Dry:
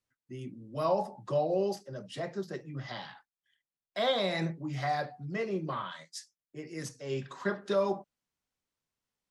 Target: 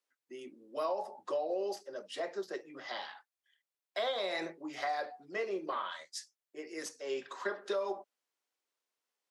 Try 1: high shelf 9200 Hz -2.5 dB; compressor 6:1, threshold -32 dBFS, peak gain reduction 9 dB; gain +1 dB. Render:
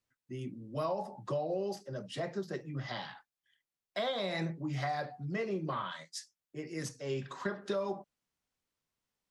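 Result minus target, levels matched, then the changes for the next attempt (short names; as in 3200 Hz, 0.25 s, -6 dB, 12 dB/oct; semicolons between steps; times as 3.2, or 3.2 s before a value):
250 Hz band +5.5 dB
add first: HPF 340 Hz 24 dB/oct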